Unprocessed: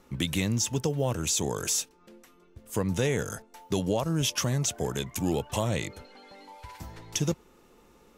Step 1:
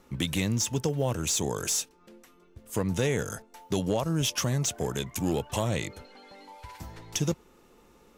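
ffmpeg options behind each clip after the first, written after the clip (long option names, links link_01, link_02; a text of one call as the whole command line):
ffmpeg -i in.wav -af "aeval=exprs='clip(val(0),-1,0.075)':channel_layout=same" out.wav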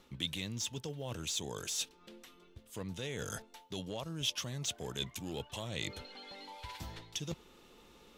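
ffmpeg -i in.wav -af "areverse,acompressor=threshold=-36dB:ratio=6,areverse,equalizer=frequency=3500:width=1.4:gain=10.5,volume=-2.5dB" out.wav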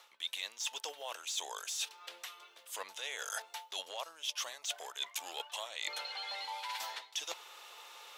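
ffmpeg -i in.wav -af "highpass=frequency=690:width=0.5412,highpass=frequency=690:width=1.3066,areverse,acompressor=threshold=-48dB:ratio=5,areverse,volume=11dB" out.wav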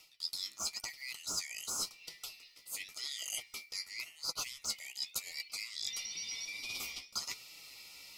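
ffmpeg -i in.wav -af "afftfilt=real='real(if(lt(b,272),68*(eq(floor(b/68),0)*3+eq(floor(b/68),1)*0+eq(floor(b/68),2)*1+eq(floor(b/68),3)*2)+mod(b,68),b),0)':imag='imag(if(lt(b,272),68*(eq(floor(b/68),0)*3+eq(floor(b/68),1)*0+eq(floor(b/68),2)*1+eq(floor(b/68),3)*2)+mod(b,68),b),0)':win_size=2048:overlap=0.75,aemphasis=mode=production:type=cd,flanger=delay=6:depth=9.1:regen=33:speed=0.92:shape=sinusoidal" out.wav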